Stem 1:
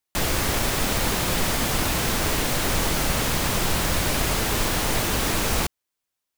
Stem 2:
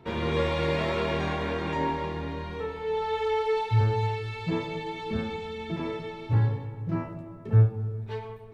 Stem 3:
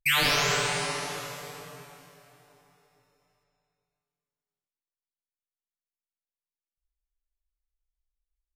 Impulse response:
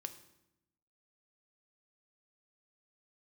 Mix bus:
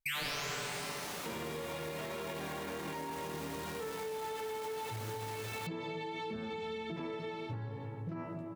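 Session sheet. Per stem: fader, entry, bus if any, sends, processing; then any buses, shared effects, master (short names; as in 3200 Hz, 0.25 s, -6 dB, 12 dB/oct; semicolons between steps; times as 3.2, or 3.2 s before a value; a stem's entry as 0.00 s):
-15.0 dB, 0.00 s, bus A, no send, soft clip -22.5 dBFS, distortion -12 dB
0.0 dB, 1.20 s, bus A, no send, compressor, threshold -30 dBFS, peak gain reduction 14.5 dB
-7.0 dB, 0.00 s, no bus, no send, dry
bus A: 0.0 dB, HPF 150 Hz 12 dB/oct; limiter -29 dBFS, peak gain reduction 7 dB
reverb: off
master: compressor 2.5:1, threshold -38 dBFS, peak gain reduction 7.5 dB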